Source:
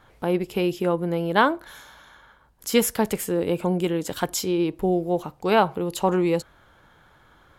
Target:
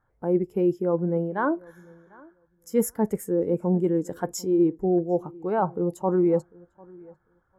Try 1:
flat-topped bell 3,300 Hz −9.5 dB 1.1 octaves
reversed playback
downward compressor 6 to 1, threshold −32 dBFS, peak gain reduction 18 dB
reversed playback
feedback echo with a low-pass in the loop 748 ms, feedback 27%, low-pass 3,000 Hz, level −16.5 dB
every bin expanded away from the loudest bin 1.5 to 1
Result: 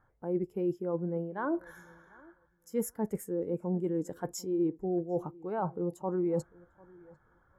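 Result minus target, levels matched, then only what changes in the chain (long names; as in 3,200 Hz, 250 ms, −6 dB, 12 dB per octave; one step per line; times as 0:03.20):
downward compressor: peak gain reduction +9 dB
change: downward compressor 6 to 1, threshold −21 dBFS, peak gain reduction 9 dB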